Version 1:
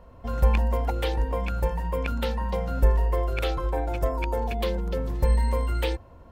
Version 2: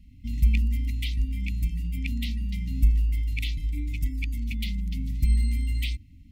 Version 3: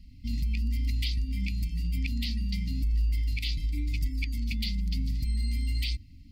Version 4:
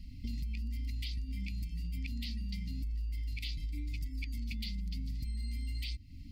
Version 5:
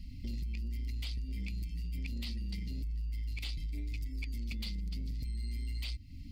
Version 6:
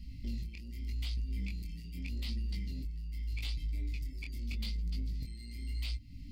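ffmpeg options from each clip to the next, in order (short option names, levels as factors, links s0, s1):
-af "afftfilt=real='re*(1-between(b*sr/4096,310,1900))':imag='im*(1-between(b*sr/4096,310,1900))':win_size=4096:overlap=0.75"
-af "alimiter=limit=0.0841:level=0:latency=1:release=140,flanger=delay=1:depth=4.4:regen=80:speed=1:shape=sinusoidal,equalizer=f=4700:t=o:w=0.34:g=15,volume=1.68"
-af "acompressor=threshold=0.01:ratio=4,volume=1.41"
-af "asoftclip=type=tanh:threshold=0.0224,volume=1.26"
-af "flanger=delay=17.5:depth=7.3:speed=0.83,volume=1.33"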